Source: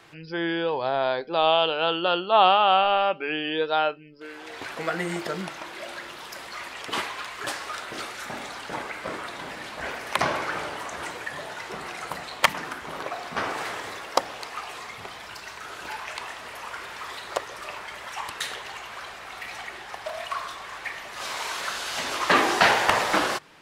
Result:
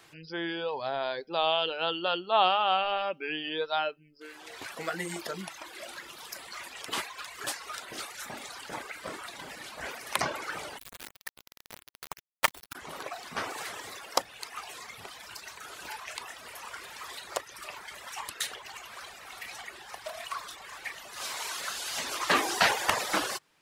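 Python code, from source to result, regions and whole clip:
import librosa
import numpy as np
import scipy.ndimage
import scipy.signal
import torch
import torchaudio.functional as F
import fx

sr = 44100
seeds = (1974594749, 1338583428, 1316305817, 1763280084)

y = fx.chain(x, sr, fx.median_filter(points=9),
    fx.sample_gate(floor_db=-28.0), at=(10.78, 12.75))
y = fx.dereverb_blind(y, sr, rt60_s=0.71)
y = fx.high_shelf(y, sr, hz=5100.0, db=11.5)
y = y * librosa.db_to_amplitude(-6.0)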